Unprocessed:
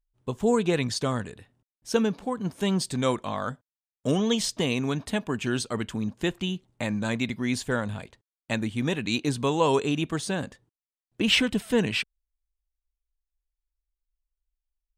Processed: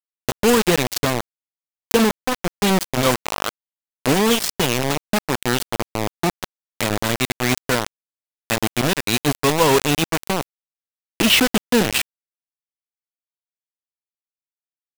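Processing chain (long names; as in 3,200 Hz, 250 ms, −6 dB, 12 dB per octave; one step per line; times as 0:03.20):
0:05.70–0:06.69: Chebyshev low-pass filter 1,300 Hz, order 5
bit reduction 4 bits
upward compression, threshold −26 dBFS
level +6 dB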